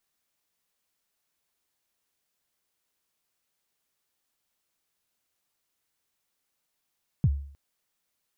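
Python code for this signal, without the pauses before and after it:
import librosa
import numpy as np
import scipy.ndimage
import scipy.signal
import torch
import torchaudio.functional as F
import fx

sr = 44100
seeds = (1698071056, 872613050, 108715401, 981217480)

y = fx.drum_kick(sr, seeds[0], length_s=0.31, level_db=-15.5, start_hz=170.0, end_hz=70.0, sweep_ms=50.0, decay_s=0.54, click=False)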